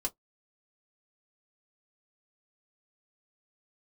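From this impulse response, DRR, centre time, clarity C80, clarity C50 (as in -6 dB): -0.5 dB, 6 ms, 46.5 dB, 30.5 dB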